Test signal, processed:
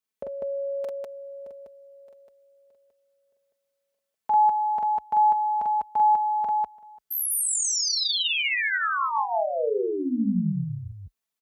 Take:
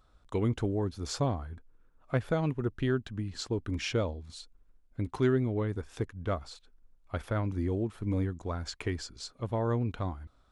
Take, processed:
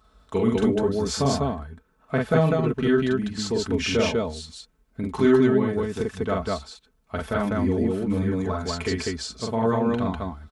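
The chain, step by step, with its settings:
high-pass filter 43 Hz 24 dB per octave
comb filter 4.6 ms, depth 66%
loudspeakers that aren't time-aligned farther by 15 metres −2 dB, 68 metres −1 dB
level +4.5 dB

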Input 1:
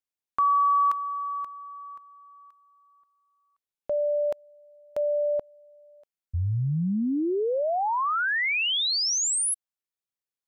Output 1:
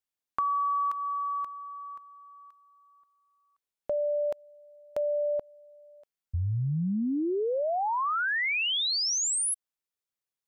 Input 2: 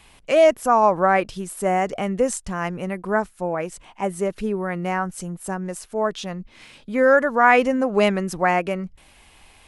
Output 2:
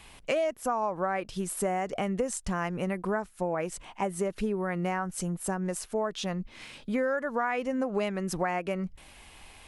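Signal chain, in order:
downward compressor 8 to 1, threshold −26 dBFS

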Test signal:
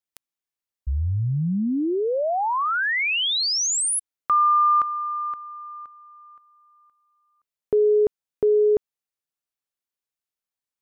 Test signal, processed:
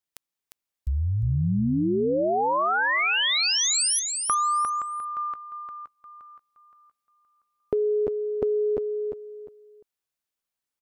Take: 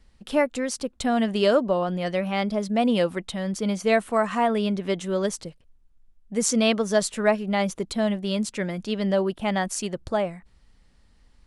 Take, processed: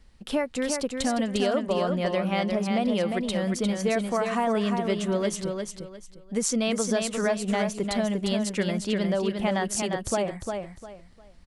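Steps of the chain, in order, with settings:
downward compressor, threshold −24 dBFS
repeating echo 352 ms, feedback 26%, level −5 dB
level +1.5 dB

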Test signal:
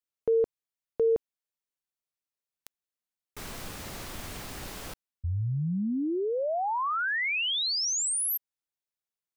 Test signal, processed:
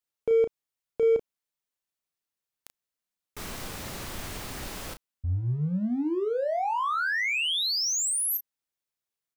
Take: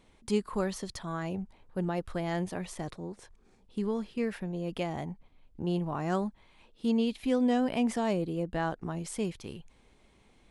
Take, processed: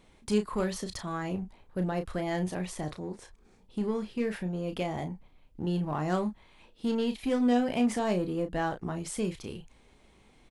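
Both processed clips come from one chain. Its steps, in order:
in parallel at −12 dB: wave folding −31 dBFS
on the sum: double-tracking delay 33 ms −8 dB

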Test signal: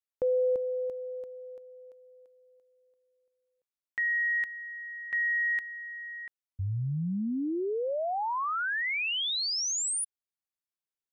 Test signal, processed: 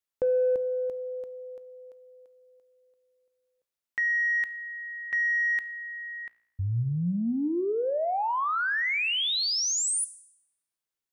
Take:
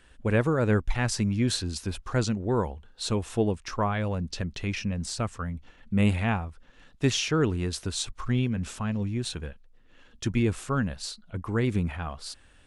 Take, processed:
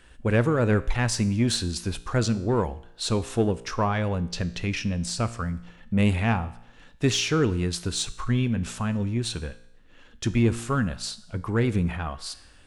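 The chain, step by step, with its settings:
in parallel at −5.5 dB: soft clipping −23.5 dBFS
on the sum: tuned comb filter 58 Hz, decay 0.76 s, harmonics all, mix 50%
level +4.5 dB

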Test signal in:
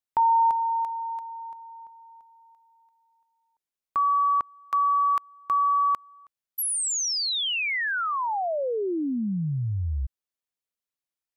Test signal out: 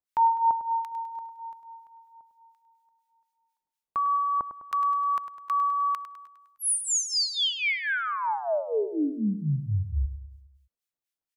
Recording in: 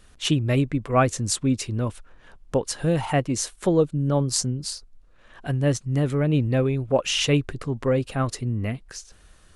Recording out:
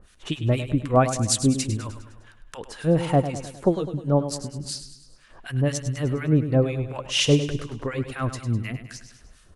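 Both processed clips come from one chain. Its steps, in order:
two-band tremolo in antiphase 4.1 Hz, depth 100%, crossover 1,200 Hz
on a send: repeating echo 102 ms, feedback 53%, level −11 dB
on the sum: level +3.5 dB

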